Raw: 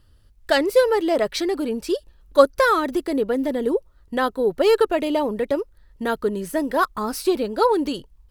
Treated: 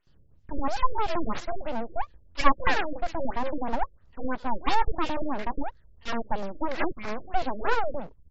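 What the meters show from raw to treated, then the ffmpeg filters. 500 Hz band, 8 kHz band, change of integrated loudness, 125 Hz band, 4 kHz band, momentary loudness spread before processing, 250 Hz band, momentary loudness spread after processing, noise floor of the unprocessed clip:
−14.5 dB, −13.0 dB, −9.0 dB, can't be measured, −8.5 dB, 9 LU, −10.0 dB, 10 LU, −55 dBFS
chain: -filter_complex "[0:a]acrossover=split=1100[link_01][link_02];[link_01]adelay=70[link_03];[link_03][link_02]amix=inputs=2:normalize=0,aeval=exprs='abs(val(0))':channel_layout=same,afftfilt=real='re*lt(b*sr/1024,590*pow(7800/590,0.5+0.5*sin(2*PI*3*pts/sr)))':imag='im*lt(b*sr/1024,590*pow(7800/590,0.5+0.5*sin(2*PI*3*pts/sr)))':win_size=1024:overlap=0.75,volume=-2dB"

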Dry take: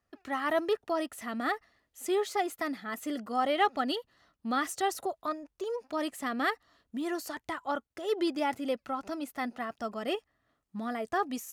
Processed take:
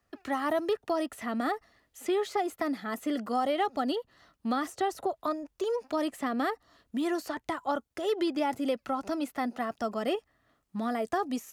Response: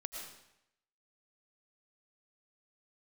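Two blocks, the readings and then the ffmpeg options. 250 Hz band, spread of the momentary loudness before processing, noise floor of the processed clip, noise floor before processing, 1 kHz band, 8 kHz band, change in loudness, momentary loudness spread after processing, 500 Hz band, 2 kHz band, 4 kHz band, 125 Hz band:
+3.0 dB, 8 LU, −77 dBFS, −82 dBFS, +0.5 dB, −3.5 dB, +1.0 dB, 5 LU, +2.0 dB, −2.5 dB, −1.5 dB, can't be measured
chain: -filter_complex "[0:a]acrossover=split=170|1100|4100[link_01][link_02][link_03][link_04];[link_01]acompressor=threshold=-56dB:ratio=4[link_05];[link_02]acompressor=threshold=-32dB:ratio=4[link_06];[link_03]acompressor=threshold=-47dB:ratio=4[link_07];[link_04]acompressor=threshold=-55dB:ratio=4[link_08];[link_05][link_06][link_07][link_08]amix=inputs=4:normalize=0,volume=5.5dB"

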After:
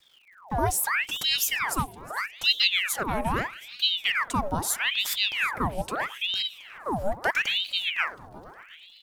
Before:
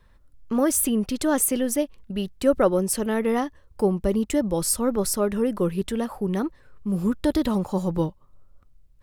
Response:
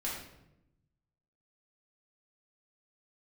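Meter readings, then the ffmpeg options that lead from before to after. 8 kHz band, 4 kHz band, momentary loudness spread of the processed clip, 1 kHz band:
−4.5 dB, +14.5 dB, 9 LU, +3.0 dB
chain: -filter_complex "[0:a]acrusher=bits=9:mix=0:aa=0.000001,afreqshift=88,bandreject=frequency=116.4:width_type=h:width=4,bandreject=frequency=232.8:width_type=h:width=4,bandreject=frequency=349.2:width_type=h:width=4,bandreject=frequency=465.6:width_type=h:width=4,asplit=7[link_01][link_02][link_03][link_04][link_05][link_06][link_07];[link_02]adelay=361,afreqshift=70,volume=-20dB[link_08];[link_03]adelay=722,afreqshift=140,volume=-23.9dB[link_09];[link_04]adelay=1083,afreqshift=210,volume=-27.8dB[link_10];[link_05]adelay=1444,afreqshift=280,volume=-31.6dB[link_11];[link_06]adelay=1805,afreqshift=350,volume=-35.5dB[link_12];[link_07]adelay=2166,afreqshift=420,volume=-39.4dB[link_13];[link_01][link_08][link_09][link_10][link_11][link_12][link_13]amix=inputs=7:normalize=0,aeval=exprs='val(0)*sin(2*PI*1900*n/s+1900*0.85/0.78*sin(2*PI*0.78*n/s))':channel_layout=same,volume=-1dB"

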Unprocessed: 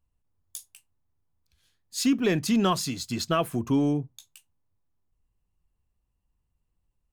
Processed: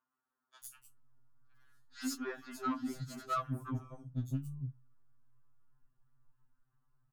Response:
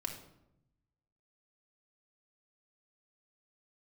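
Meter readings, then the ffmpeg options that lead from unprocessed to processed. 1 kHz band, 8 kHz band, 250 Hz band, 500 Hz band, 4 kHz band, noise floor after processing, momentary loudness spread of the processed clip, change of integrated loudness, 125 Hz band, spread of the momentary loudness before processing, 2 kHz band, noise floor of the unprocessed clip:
−8.0 dB, −14.5 dB, −15.0 dB, −17.5 dB, −18.5 dB, below −85 dBFS, 15 LU, −13.5 dB, −7.5 dB, 19 LU, −12.0 dB, −77 dBFS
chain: -filter_complex "[0:a]firequalizer=gain_entry='entry(260,0);entry(480,-10);entry(1400,9);entry(2200,-11);entry(4100,-16);entry(15000,-10)':delay=0.05:min_phase=1,acompressor=threshold=-35dB:ratio=20,acrossover=split=290|3900[link_01][link_02][link_03];[link_03]adelay=100[link_04];[link_01]adelay=630[link_05];[link_05][link_02][link_04]amix=inputs=3:normalize=0,asoftclip=type=tanh:threshold=-36.5dB,afftfilt=real='re*2.45*eq(mod(b,6),0)':imag='im*2.45*eq(mod(b,6),0)':win_size=2048:overlap=0.75,volume=7dB"

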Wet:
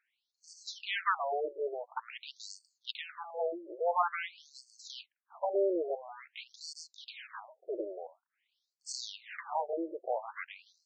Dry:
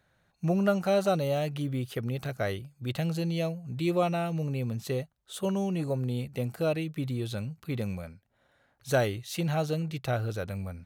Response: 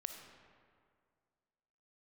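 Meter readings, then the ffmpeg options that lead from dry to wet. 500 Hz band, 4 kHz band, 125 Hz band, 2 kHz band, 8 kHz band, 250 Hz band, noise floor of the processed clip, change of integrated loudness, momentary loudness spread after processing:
−5.5 dB, −2.0 dB, below −40 dB, −2.5 dB, −3.5 dB, −15.0 dB, below −85 dBFS, −6.5 dB, 16 LU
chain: -af "aeval=exprs='abs(val(0))':channel_layout=same,agate=range=-8dB:threshold=-53dB:ratio=16:detection=peak,afftfilt=real='re*between(b*sr/1024,450*pow(6200/450,0.5+0.5*sin(2*PI*0.48*pts/sr))/1.41,450*pow(6200/450,0.5+0.5*sin(2*PI*0.48*pts/sr))*1.41)':imag='im*between(b*sr/1024,450*pow(6200/450,0.5+0.5*sin(2*PI*0.48*pts/sr))/1.41,450*pow(6200/450,0.5+0.5*sin(2*PI*0.48*pts/sr))*1.41)':win_size=1024:overlap=0.75,volume=5.5dB"

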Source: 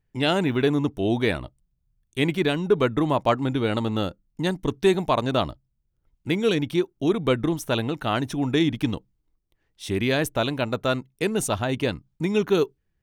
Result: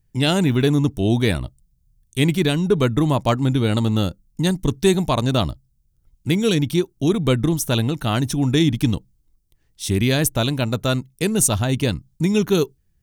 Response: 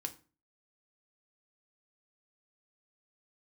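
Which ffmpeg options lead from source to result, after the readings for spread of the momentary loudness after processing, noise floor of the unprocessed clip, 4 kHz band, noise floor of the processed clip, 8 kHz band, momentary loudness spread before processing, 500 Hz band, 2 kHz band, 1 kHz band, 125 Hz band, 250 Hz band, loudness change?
6 LU, −75 dBFS, +5.0 dB, −65 dBFS, +12.0 dB, 7 LU, +1.0 dB, +1.0 dB, 0.0 dB, +9.0 dB, +5.0 dB, +4.5 dB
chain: -af "bass=frequency=250:gain=10,treble=frequency=4000:gain=13"

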